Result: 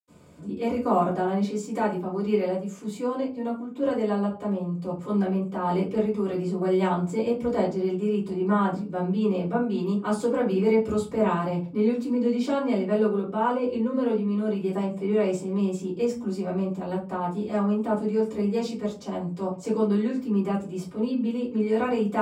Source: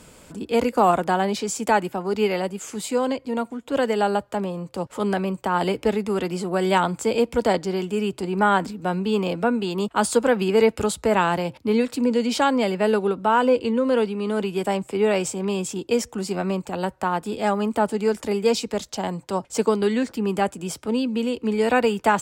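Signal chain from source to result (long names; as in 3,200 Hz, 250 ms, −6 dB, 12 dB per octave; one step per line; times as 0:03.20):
high-pass filter 78 Hz
low-shelf EQ 160 Hz −7 dB
convolution reverb RT60 0.35 s, pre-delay 76 ms, DRR −60 dB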